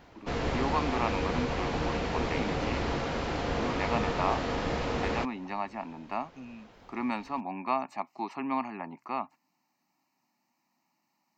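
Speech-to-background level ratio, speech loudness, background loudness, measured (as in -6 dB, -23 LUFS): -3.5 dB, -35.5 LUFS, -32.0 LUFS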